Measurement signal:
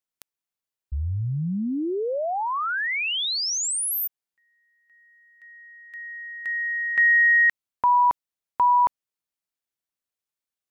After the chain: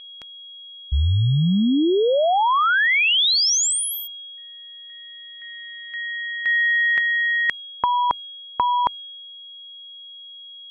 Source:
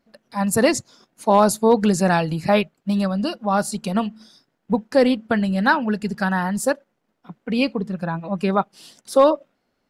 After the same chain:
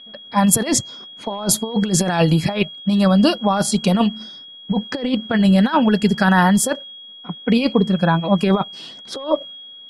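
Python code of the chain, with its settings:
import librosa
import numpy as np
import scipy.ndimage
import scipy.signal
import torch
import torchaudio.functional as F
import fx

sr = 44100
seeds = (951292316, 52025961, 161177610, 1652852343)

y = fx.over_compress(x, sr, threshold_db=-21.0, ratio=-0.5)
y = y + 10.0 ** (-39.0 / 20.0) * np.sin(2.0 * np.pi * 3300.0 * np.arange(len(y)) / sr)
y = fx.env_lowpass(y, sr, base_hz=2400.0, full_db=-17.5)
y = F.gain(torch.from_numpy(y), 6.0).numpy()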